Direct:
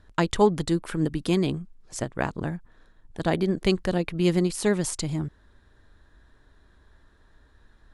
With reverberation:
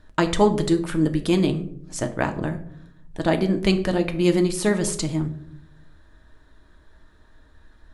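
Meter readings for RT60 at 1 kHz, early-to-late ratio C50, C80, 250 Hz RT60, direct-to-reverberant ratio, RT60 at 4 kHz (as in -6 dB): 0.55 s, 13.0 dB, 16.5 dB, 1.1 s, 5.5 dB, 0.35 s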